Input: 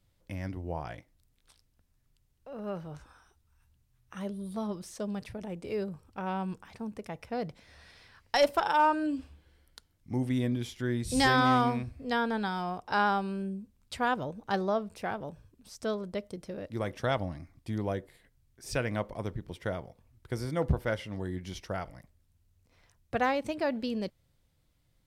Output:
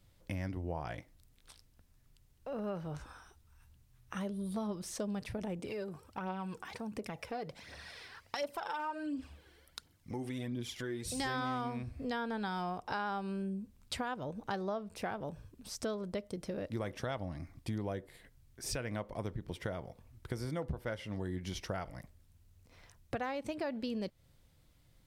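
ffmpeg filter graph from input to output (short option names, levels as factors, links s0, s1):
-filter_complex "[0:a]asettb=1/sr,asplit=3[s0][s1][s2];[s0]atrim=end=5.594[s3];[s1]atrim=start=5.59:end=11.2,asetpts=PTS-STARTPTS,afade=t=in:d=0.004:c=qsin,afade=t=out:st=5.606:d=0.004:c=qsin,highpass=f=180:p=1,acompressor=threshold=0.00708:ratio=2:attack=3.2:release=140:knee=1:detection=peak,aphaser=in_gain=1:out_gain=1:delay=2.9:decay=0.49:speed=1.4:type=triangular[s4];[s2]atrim=start=11.196[s5];[s3][s4]acrossfade=d=0.004:c1=hsin:c2=qsin[s6];[s6][s5]acrossfade=d=0.004:c1=qsin:c2=hsin,alimiter=limit=0.0708:level=0:latency=1:release=492,acompressor=threshold=0.00794:ratio=3,volume=1.78"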